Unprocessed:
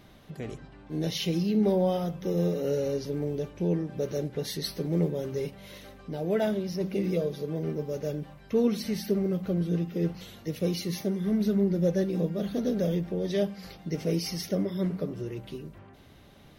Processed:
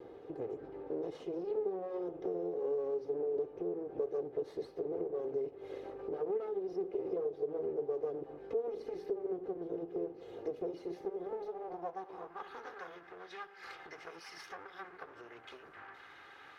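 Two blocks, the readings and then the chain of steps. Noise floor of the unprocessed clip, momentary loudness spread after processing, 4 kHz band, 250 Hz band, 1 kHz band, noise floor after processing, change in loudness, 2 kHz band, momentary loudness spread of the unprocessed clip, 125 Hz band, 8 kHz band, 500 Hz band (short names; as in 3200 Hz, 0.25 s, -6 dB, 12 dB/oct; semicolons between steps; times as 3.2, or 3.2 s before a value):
-53 dBFS, 13 LU, under -20 dB, -16.5 dB, -3.5 dB, -56 dBFS, -10.0 dB, -6.5 dB, 13 LU, -27.5 dB, under -20 dB, -6.5 dB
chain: minimum comb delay 2.4 ms; compressor 10:1, threshold -44 dBFS, peak gain reduction 20.5 dB; band-pass sweep 450 Hz -> 1500 Hz, 11.03–12.72; gain +13 dB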